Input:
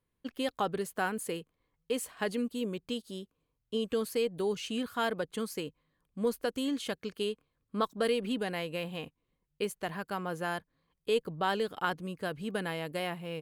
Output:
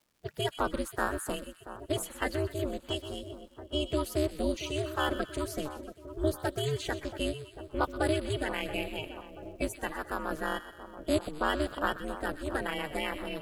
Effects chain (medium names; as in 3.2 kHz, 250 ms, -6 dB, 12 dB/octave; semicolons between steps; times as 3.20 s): coarse spectral quantiser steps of 30 dB; ring modulator 150 Hz; crackle 420 per s -63 dBFS; two-band feedback delay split 1.3 kHz, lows 681 ms, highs 125 ms, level -12 dB; trim +4.5 dB